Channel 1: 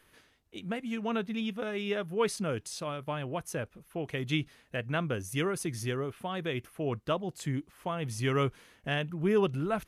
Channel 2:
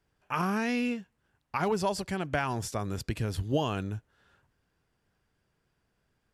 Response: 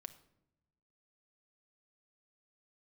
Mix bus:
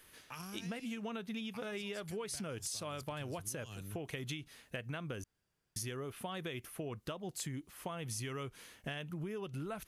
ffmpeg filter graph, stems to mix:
-filter_complex "[0:a]acompressor=threshold=0.0251:ratio=6,volume=0.891,asplit=3[s0][s1][s2];[s0]atrim=end=5.24,asetpts=PTS-STARTPTS,afade=t=out:st=5.236:d=0.004:c=hsin[s3];[s1]atrim=start=5.24:end=5.76,asetpts=PTS-STARTPTS,volume=0[s4];[s2]atrim=start=5.76,asetpts=PTS-STARTPTS,afade=t=in:d=0.004:c=hsin[s5];[s3][s4][s5]concat=n=3:v=0:a=1,asplit=2[s6][s7];[1:a]acrossover=split=140|3000[s8][s9][s10];[s9]acompressor=threshold=0.01:ratio=6[s11];[s8][s11][s10]amix=inputs=3:normalize=0,volume=0.335[s12];[s7]apad=whole_len=279516[s13];[s12][s13]sidechaincompress=threshold=0.00708:ratio=8:attack=11:release=115[s14];[s6][s14]amix=inputs=2:normalize=0,highshelf=f=3600:g=9.5,acompressor=threshold=0.0126:ratio=6"

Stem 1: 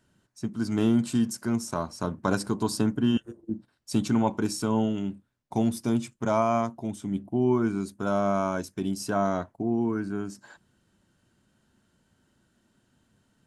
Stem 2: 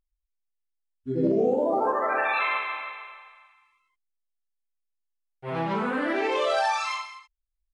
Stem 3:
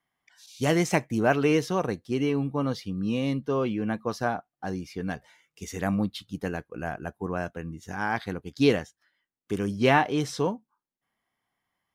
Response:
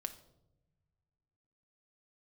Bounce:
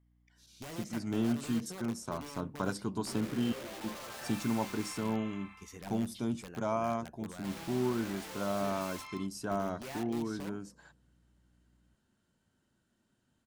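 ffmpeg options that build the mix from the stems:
-filter_complex "[0:a]adelay=350,volume=0.376[s0];[1:a]acompressor=threshold=0.0112:ratio=2,adelay=2000,volume=1.33,asplit=2[s1][s2];[s2]volume=0.188[s3];[2:a]aeval=exprs='val(0)+0.00158*(sin(2*PI*60*n/s)+sin(2*PI*2*60*n/s)/2+sin(2*PI*3*60*n/s)/3+sin(2*PI*4*60*n/s)/4+sin(2*PI*5*60*n/s)/5)':c=same,volume=0.224,asplit=3[s4][s5][s6];[s5]volume=0.299[s7];[s6]apad=whole_len=429284[s8];[s1][s8]sidechaincompress=threshold=0.0112:ratio=8:attack=8.6:release=133[s9];[s9][s4]amix=inputs=2:normalize=0,aeval=exprs='(mod(47.3*val(0)+1,2)-1)/47.3':c=same,acompressor=threshold=0.00447:ratio=6,volume=1[s10];[3:a]atrim=start_sample=2205[s11];[s3][s7]amix=inputs=2:normalize=0[s12];[s12][s11]afir=irnorm=-1:irlink=0[s13];[s0][s10][s13]amix=inputs=3:normalize=0"

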